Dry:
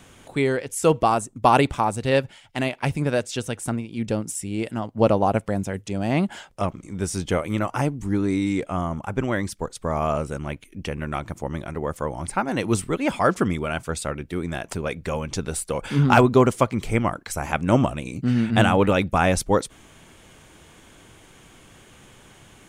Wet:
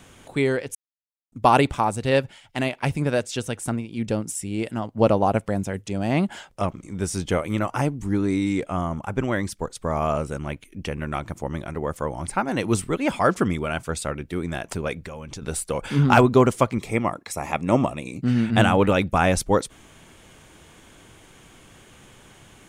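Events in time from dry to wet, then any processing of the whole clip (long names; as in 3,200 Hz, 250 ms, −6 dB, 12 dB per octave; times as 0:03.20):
0:00.75–0:01.32: silence
0:14.99–0:15.42: downward compressor 5 to 1, threshold −33 dBFS
0:16.78–0:18.23: notch comb filter 1,500 Hz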